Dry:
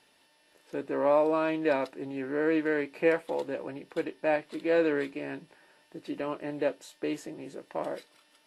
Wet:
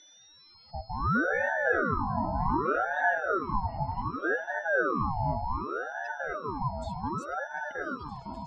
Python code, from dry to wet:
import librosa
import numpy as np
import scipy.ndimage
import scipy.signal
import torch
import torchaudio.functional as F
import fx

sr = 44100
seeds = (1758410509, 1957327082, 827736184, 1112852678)

p1 = fx.spec_expand(x, sr, power=2.7)
p2 = p1 + 10.0 ** (-51.0 / 20.0) * np.sin(2.0 * np.pi * 4700.0 * np.arange(len(p1)) / sr)
p3 = p2 + fx.echo_opening(p2, sr, ms=253, hz=400, octaves=1, feedback_pct=70, wet_db=0, dry=0)
y = fx.ring_lfo(p3, sr, carrier_hz=780.0, swing_pct=55, hz=0.66)